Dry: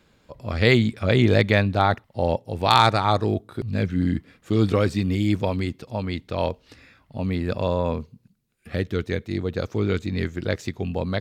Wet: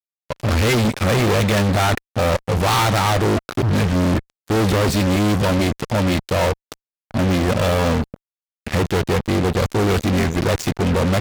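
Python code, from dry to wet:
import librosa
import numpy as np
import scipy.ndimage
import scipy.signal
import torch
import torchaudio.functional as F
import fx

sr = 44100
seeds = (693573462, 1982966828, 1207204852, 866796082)

y = fx.spec_quant(x, sr, step_db=15)
y = fx.fuzz(y, sr, gain_db=39.0, gate_db=-40.0)
y = y * librosa.db_to_amplitude(-2.0)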